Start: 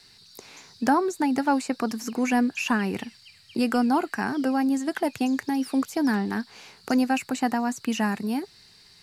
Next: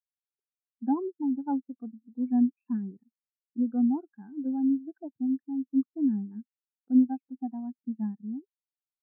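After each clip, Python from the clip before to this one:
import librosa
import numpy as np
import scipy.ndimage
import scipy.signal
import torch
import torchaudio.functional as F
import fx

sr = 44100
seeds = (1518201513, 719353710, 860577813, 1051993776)

y = scipy.signal.sosfilt(scipy.signal.butter(4, 1900.0, 'lowpass', fs=sr, output='sos'), x)
y = fx.low_shelf(y, sr, hz=340.0, db=4.0)
y = fx.spectral_expand(y, sr, expansion=2.5)
y = y * 10.0 ** (-3.5 / 20.0)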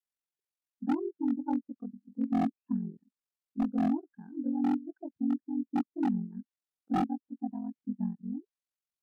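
y = fx.env_lowpass_down(x, sr, base_hz=820.0, full_db=-26.0)
y = y * np.sin(2.0 * np.pi * 22.0 * np.arange(len(y)) / sr)
y = 10.0 ** (-23.0 / 20.0) * (np.abs((y / 10.0 ** (-23.0 / 20.0) + 3.0) % 4.0 - 2.0) - 1.0)
y = y * 10.0 ** (1.5 / 20.0)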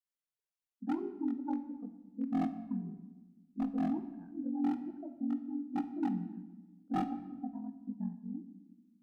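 y = fx.room_shoebox(x, sr, seeds[0], volume_m3=840.0, walls='mixed', distance_m=0.54)
y = y * 10.0 ** (-5.0 / 20.0)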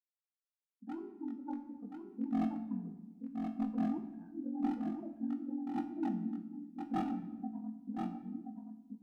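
y = fx.fade_in_head(x, sr, length_s=1.98)
y = fx.comb_fb(y, sr, f0_hz=110.0, decay_s=0.41, harmonics='all', damping=0.0, mix_pct=70)
y = y + 10.0 ** (-5.5 / 20.0) * np.pad(y, (int(1027 * sr / 1000.0), 0))[:len(y)]
y = y * 10.0 ** (5.5 / 20.0)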